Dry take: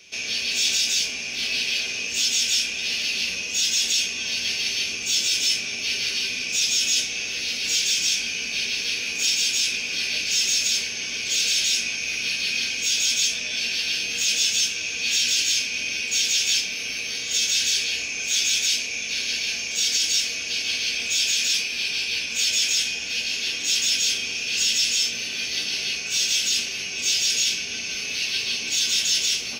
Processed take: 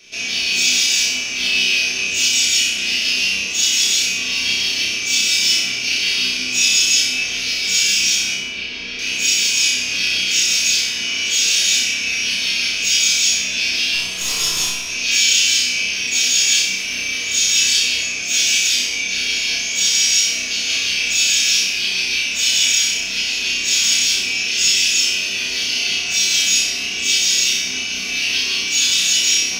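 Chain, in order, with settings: 8.34–8.99 tape spacing loss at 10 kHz 26 dB; 13.94–14.9 tube stage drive 17 dB, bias 0.75; flutter echo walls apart 5.4 m, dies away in 0.76 s; on a send at -1.5 dB: reverb RT60 0.45 s, pre-delay 3 ms; on the sum: gain +1 dB

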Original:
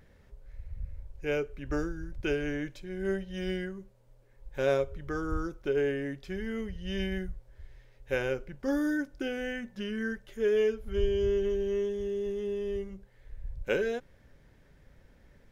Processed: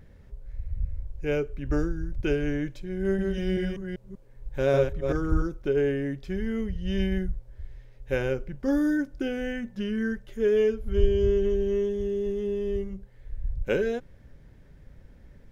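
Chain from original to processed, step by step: 2.99–5.42 reverse delay 0.194 s, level -3.5 dB; low shelf 350 Hz +9 dB

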